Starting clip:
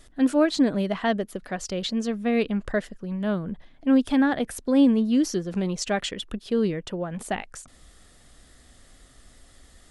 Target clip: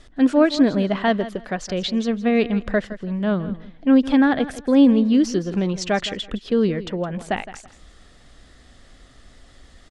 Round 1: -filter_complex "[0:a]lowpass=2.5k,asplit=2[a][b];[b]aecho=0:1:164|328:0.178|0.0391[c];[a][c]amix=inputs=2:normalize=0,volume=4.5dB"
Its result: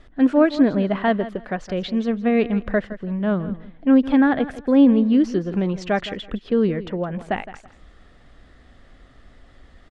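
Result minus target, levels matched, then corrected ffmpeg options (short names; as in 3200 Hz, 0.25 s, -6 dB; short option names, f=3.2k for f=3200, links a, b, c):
4000 Hz band -6.0 dB
-filter_complex "[0:a]lowpass=5.4k,asplit=2[a][b];[b]aecho=0:1:164|328:0.178|0.0391[c];[a][c]amix=inputs=2:normalize=0,volume=4.5dB"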